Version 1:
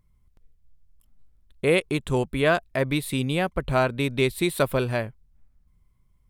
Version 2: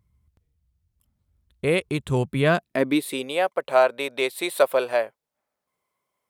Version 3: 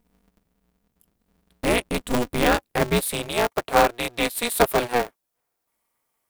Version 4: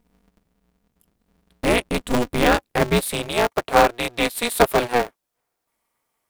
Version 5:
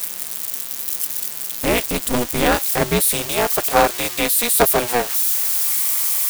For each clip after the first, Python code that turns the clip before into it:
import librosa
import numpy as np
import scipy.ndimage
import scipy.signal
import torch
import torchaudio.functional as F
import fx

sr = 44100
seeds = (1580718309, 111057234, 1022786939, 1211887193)

y1 = fx.rider(x, sr, range_db=10, speed_s=2.0)
y1 = fx.filter_sweep_highpass(y1, sr, from_hz=74.0, to_hz=570.0, start_s=2.01, end_s=3.35, q=2.0)
y2 = fx.high_shelf(y1, sr, hz=6800.0, db=11.0)
y2 = y2 * np.sign(np.sin(2.0 * np.pi * 120.0 * np.arange(len(y2)) / sr))
y3 = fx.high_shelf(y2, sr, hz=10000.0, db=-6.0)
y3 = y3 * librosa.db_to_amplitude(2.5)
y4 = y3 + 0.5 * 10.0 ** (-14.0 / 20.0) * np.diff(np.sign(y3), prepend=np.sign(y3[:1]))